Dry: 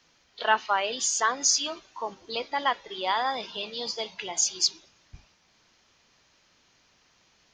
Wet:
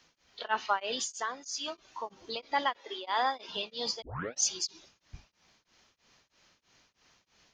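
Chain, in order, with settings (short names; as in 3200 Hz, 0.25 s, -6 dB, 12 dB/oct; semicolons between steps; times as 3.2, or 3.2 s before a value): 0.96–1.68 compressor 6:1, threshold -30 dBFS, peak gain reduction 11.5 dB; 2.77–3.49 elliptic high-pass 240 Hz; 4.02 tape start 0.41 s; beating tremolo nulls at 3.1 Hz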